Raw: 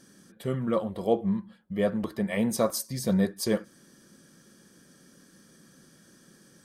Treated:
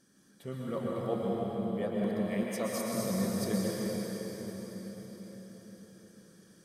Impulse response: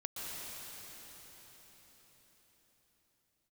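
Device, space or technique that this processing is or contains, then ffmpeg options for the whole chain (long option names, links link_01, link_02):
cathedral: -filter_complex "[1:a]atrim=start_sample=2205[link_01];[0:a][link_01]afir=irnorm=-1:irlink=0,asettb=1/sr,asplit=3[link_02][link_03][link_04];[link_02]atrim=end=2.434[link_05];[link_03]atrim=start=2.43:end=2.94,asetpts=PTS-STARTPTS,afade=type=in:duration=0.004:curve=qsin,afade=type=out:start_time=0.506:duration=0.004:curve=qsin,highpass=frequency=280:poles=1[link_06];[link_04]atrim=start=2.936[link_07];[link_05][link_06]acrossfade=duration=0.004:curve1=hsin:curve2=qsin[link_08];[link_08][link_07]acrossfade=duration=0.004:curve1=qsin:curve2=hsin,volume=-6dB"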